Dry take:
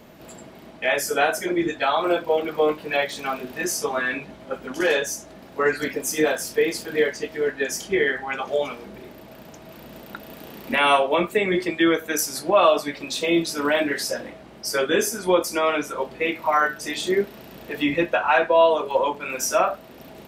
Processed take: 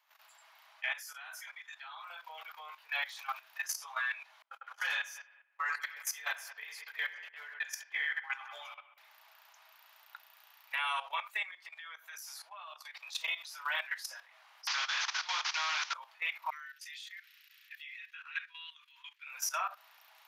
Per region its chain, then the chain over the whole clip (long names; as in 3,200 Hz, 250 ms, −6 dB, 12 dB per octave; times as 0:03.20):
0:00.92–0:02.10: downward compressor, threshold −24 dBFS + high-pass filter 690 Hz
0:04.42–0:08.98: noise gate −33 dBFS, range −29 dB + bucket-brigade delay 100 ms, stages 2,048, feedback 45%, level −7 dB
0:11.51–0:13.12: low-shelf EQ 460 Hz +4.5 dB + downward compressor 4 to 1, threshold −29 dBFS
0:14.67–0:15.94: variable-slope delta modulation 32 kbit/s + Chebyshev low-pass filter 4,700 Hz + every bin compressed towards the loudest bin 2 to 1
0:16.50–0:19.27: inverse Chebyshev high-pass filter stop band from 730 Hz, stop band 50 dB + high-shelf EQ 3,900 Hz −8 dB
whole clip: Butterworth high-pass 900 Hz 36 dB per octave; parametric band 8,100 Hz −9 dB 0.26 octaves; output level in coarse steps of 14 dB; level −5.5 dB